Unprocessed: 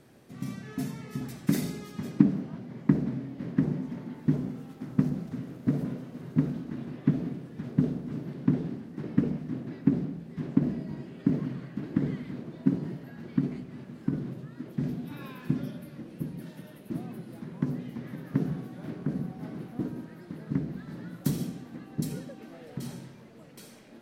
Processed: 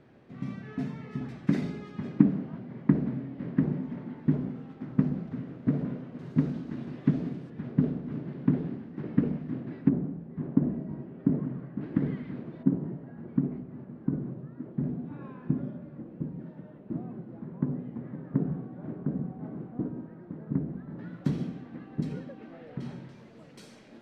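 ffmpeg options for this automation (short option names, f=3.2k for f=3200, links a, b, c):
-af "asetnsamples=n=441:p=0,asendcmd='6.19 lowpass f 6100;7.5 lowpass f 2800;9.89 lowpass f 1200;11.81 lowpass f 2600;12.63 lowpass f 1100;20.99 lowpass f 2700;23.09 lowpass f 6500',lowpass=2.7k"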